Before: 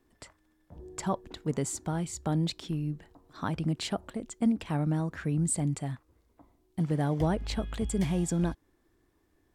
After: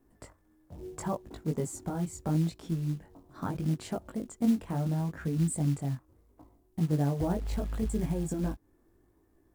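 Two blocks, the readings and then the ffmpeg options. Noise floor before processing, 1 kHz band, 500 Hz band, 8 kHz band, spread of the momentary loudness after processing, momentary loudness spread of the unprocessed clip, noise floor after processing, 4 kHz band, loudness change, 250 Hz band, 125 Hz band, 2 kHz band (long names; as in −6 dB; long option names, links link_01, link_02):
−71 dBFS, −3.0 dB, −1.5 dB, −5.5 dB, 11 LU, 10 LU, −68 dBFS, −9.5 dB, −1.0 dB, −0.5 dB, 0.0 dB, −6.0 dB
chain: -filter_complex "[0:a]equalizer=frequency=3600:width_type=o:width=2.2:gain=-14,asplit=2[link_01][link_02];[link_02]acompressor=threshold=-38dB:ratio=8,volume=1.5dB[link_03];[link_01][link_03]amix=inputs=2:normalize=0,flanger=delay=18:depth=4.4:speed=0.75,acrusher=bits=6:mode=log:mix=0:aa=0.000001"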